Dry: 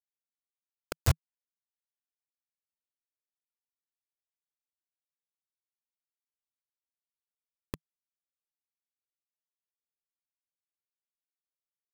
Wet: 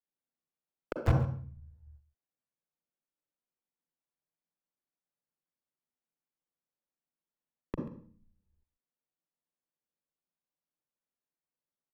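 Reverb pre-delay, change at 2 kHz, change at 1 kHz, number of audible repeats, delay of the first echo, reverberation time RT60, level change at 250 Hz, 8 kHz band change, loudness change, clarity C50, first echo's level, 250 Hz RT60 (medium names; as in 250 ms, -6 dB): 38 ms, -2.0 dB, +2.5 dB, 1, 136 ms, 0.50 s, +7.5 dB, under -15 dB, -2.5 dB, 5.0 dB, -16.5 dB, 0.75 s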